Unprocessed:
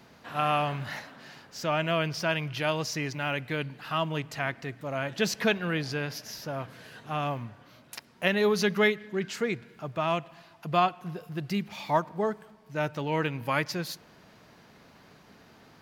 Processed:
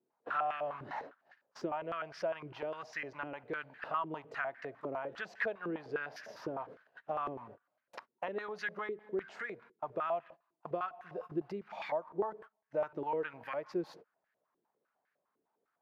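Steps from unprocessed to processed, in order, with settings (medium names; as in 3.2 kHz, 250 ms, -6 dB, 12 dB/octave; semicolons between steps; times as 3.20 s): gate -44 dBFS, range -30 dB; compression 6:1, threshold -38 dBFS, peak gain reduction 18 dB; step-sequenced band-pass 9.9 Hz 370–1700 Hz; trim +12 dB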